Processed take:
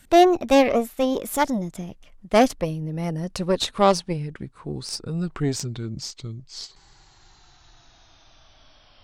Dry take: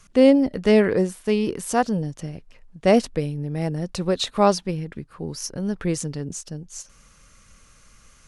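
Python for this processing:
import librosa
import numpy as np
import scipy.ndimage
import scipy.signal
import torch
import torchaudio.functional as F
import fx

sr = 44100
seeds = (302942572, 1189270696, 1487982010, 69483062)

y = fx.speed_glide(x, sr, from_pct=133, to_pct=50)
y = fx.cheby_harmonics(y, sr, harmonics=(6,), levels_db=(-20,), full_scale_db=-3.5)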